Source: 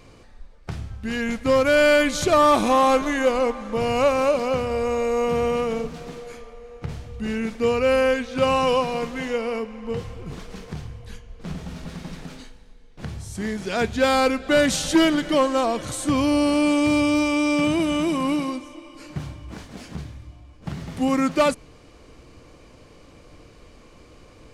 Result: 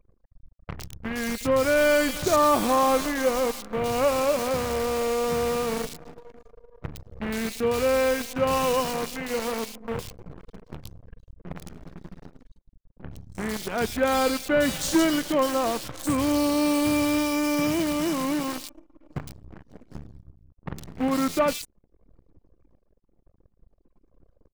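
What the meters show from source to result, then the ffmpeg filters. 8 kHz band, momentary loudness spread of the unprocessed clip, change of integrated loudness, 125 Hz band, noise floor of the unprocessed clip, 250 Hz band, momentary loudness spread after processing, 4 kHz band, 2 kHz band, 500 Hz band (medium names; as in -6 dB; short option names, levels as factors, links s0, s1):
+0.5 dB, 19 LU, -3.5 dB, -4.5 dB, -49 dBFS, -3.5 dB, 20 LU, -3.5 dB, -4.0 dB, -3.5 dB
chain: -filter_complex "[0:a]acrusher=bits=5:dc=4:mix=0:aa=0.000001,acrossover=split=2800[s0][s1];[s1]adelay=110[s2];[s0][s2]amix=inputs=2:normalize=0,anlmdn=0.158,volume=0.668"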